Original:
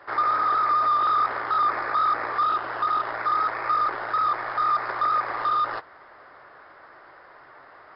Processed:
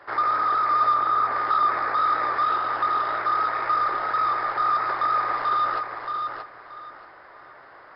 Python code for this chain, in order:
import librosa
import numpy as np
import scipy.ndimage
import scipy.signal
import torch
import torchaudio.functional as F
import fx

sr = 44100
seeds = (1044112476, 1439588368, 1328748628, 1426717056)

y = fx.lowpass(x, sr, hz=1800.0, slope=6, at=(0.94, 1.36))
y = fx.echo_feedback(y, sr, ms=627, feedback_pct=24, wet_db=-5.5)